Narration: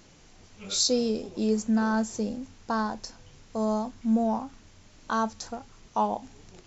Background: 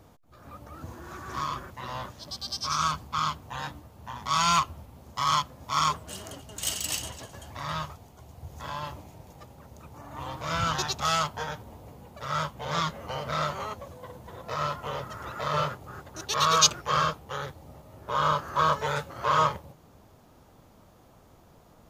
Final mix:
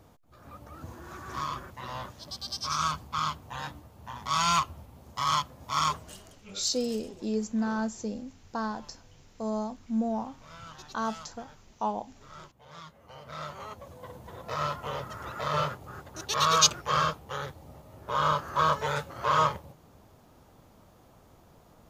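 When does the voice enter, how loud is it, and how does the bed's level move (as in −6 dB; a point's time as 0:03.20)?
5.85 s, −4.5 dB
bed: 0:06.00 −2 dB
0:06.45 −19 dB
0:12.81 −19 dB
0:14.06 −1 dB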